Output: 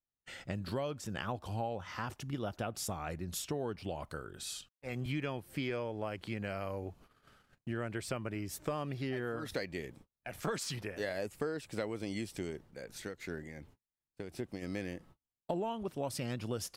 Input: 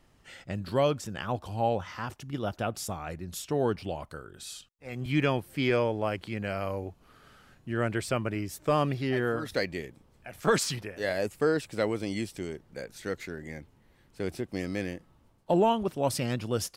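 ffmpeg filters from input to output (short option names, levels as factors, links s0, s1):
-filter_complex "[0:a]agate=range=0.0126:threshold=0.002:ratio=16:detection=peak,acompressor=threshold=0.02:ratio=6,asplit=3[s0][s1][s2];[s0]afade=t=out:st=12.5:d=0.02[s3];[s1]tremolo=f=2.7:d=0.56,afade=t=in:st=12.5:d=0.02,afade=t=out:st=14.61:d=0.02[s4];[s2]afade=t=in:st=14.61:d=0.02[s5];[s3][s4][s5]amix=inputs=3:normalize=0"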